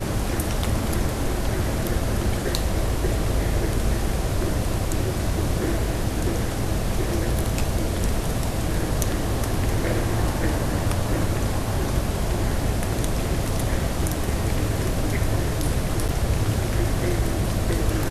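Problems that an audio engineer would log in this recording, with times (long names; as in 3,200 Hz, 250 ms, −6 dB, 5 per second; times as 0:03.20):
0:16.08–0:16.09: drop-out 7 ms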